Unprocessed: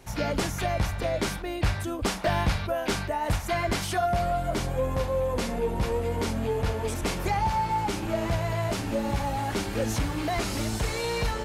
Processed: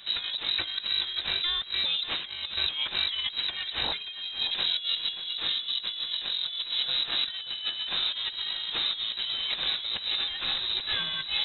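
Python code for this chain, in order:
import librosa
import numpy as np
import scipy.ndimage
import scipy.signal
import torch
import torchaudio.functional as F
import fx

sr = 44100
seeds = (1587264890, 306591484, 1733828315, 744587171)

p1 = fx.low_shelf(x, sr, hz=210.0, db=-4.0, at=(4.4, 5.02))
p2 = fx.over_compress(p1, sr, threshold_db=-31.0, ratio=-0.5)
p3 = p2 + fx.echo_single(p2, sr, ms=582, db=-13.0, dry=0)
y = fx.freq_invert(p3, sr, carrier_hz=3900)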